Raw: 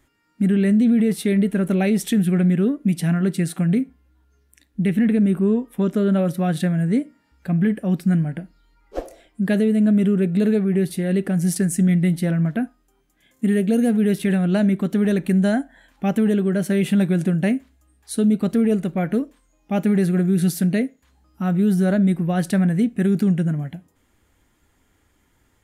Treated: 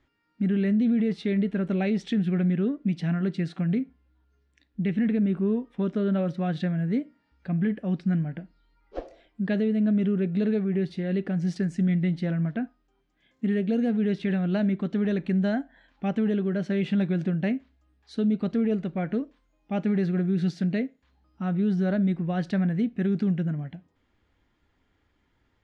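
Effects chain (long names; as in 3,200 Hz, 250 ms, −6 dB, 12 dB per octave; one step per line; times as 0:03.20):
low-pass filter 4,900 Hz 24 dB per octave
level −6.5 dB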